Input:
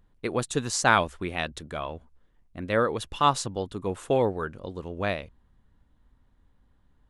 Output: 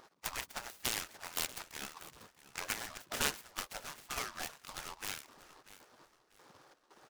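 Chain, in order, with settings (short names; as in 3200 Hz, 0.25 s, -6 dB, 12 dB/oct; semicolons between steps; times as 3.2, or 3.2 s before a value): median filter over 15 samples; step gate "x..xxx....xxx" 176 bpm -12 dB; dynamic EQ 2400 Hz, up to +4 dB, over -35 dBFS, Q 0.76; compressor 20:1, threshold -32 dBFS, peak gain reduction 19.5 dB; bell 1100 Hz +10 dB 0.54 oct; spectral gate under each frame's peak -25 dB weak; feedback echo 0.639 s, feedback 29%, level -17 dB; noise-modulated delay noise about 3400 Hz, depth 0.068 ms; gain +17 dB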